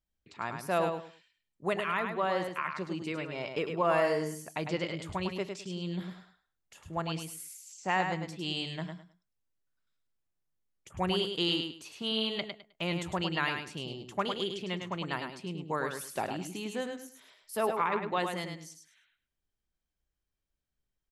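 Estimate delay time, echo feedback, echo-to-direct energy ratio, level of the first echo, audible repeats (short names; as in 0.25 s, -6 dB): 0.104 s, 22%, -6.0 dB, -6.0 dB, 3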